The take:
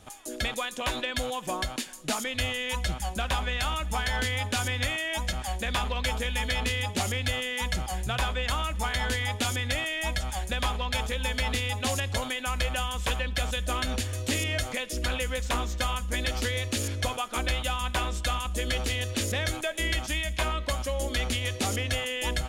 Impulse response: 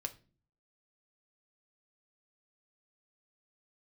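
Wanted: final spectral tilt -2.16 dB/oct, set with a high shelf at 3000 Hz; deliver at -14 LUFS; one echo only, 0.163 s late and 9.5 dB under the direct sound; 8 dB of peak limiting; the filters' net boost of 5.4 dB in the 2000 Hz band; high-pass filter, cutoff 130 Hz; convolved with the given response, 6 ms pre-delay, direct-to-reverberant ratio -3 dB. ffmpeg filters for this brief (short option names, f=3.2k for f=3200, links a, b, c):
-filter_complex "[0:a]highpass=130,equalizer=f=2k:t=o:g=3.5,highshelf=f=3k:g=8,alimiter=limit=-17.5dB:level=0:latency=1,aecho=1:1:163:0.335,asplit=2[a][b];[1:a]atrim=start_sample=2205,adelay=6[c];[b][c]afir=irnorm=-1:irlink=0,volume=4dB[d];[a][d]amix=inputs=2:normalize=0,volume=8.5dB"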